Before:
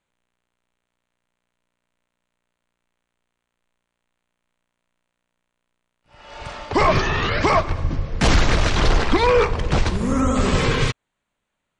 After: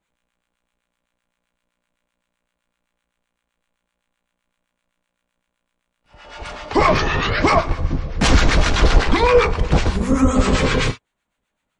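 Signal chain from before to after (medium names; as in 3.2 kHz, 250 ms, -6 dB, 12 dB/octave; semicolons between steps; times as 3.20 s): gated-style reverb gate 80 ms falling, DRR 7 dB; harmonic tremolo 7.8 Hz, depth 70%, crossover 920 Hz; trim +4.5 dB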